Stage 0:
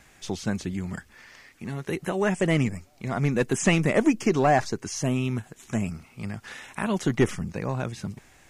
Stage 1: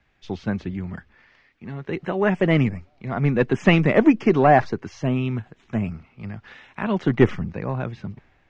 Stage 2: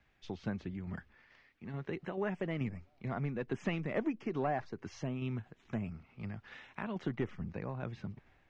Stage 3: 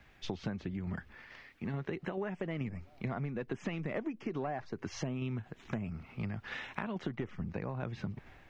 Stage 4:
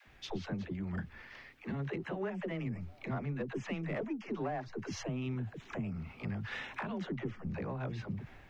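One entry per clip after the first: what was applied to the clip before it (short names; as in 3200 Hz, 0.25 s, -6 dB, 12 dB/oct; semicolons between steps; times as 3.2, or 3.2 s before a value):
Bessel low-pass 2700 Hz, order 4; three-band expander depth 40%; gain +4 dB
compressor 2.5:1, threshold -30 dBFS, peak gain reduction 14 dB; tremolo saw down 2.3 Hz, depth 40%; gain -5.5 dB
compressor 6:1, threshold -45 dBFS, peak gain reduction 15.5 dB; gain +10.5 dB
dispersion lows, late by 72 ms, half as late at 370 Hz; in parallel at -9 dB: soft clip -40 dBFS, distortion -9 dB; on the sum: gain -1.5 dB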